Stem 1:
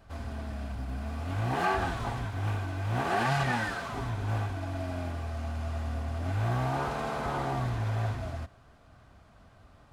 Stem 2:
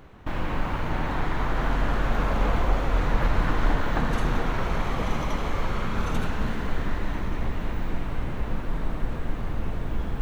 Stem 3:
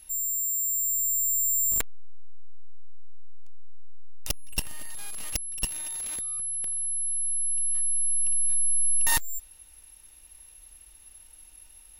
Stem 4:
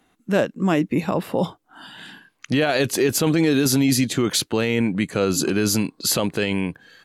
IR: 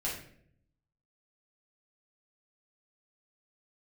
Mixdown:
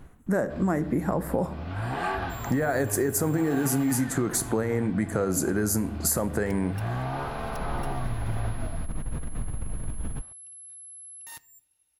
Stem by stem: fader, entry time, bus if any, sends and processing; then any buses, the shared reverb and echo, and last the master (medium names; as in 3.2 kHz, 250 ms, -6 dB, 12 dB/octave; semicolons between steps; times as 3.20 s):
-1.0 dB, 0.40 s, no send, low-pass 4.8 kHz 24 dB/octave
-8.5 dB, 0.00 s, no send, peak limiter -19 dBFS, peak gain reduction 9 dB; compressor with a negative ratio -30 dBFS, ratio -1; tone controls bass +9 dB, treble +1 dB; auto duck -19 dB, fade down 0.25 s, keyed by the fourth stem
-19.5 dB, 2.20 s, send -21 dB, high-pass 99 Hz
+0.5 dB, 0.00 s, send -14.5 dB, FFT filter 1.9 kHz 0 dB, 2.8 kHz -27 dB, 8 kHz +3 dB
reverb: on, RT60 0.65 s, pre-delay 6 ms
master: compression 6:1, threshold -22 dBFS, peak gain reduction 10 dB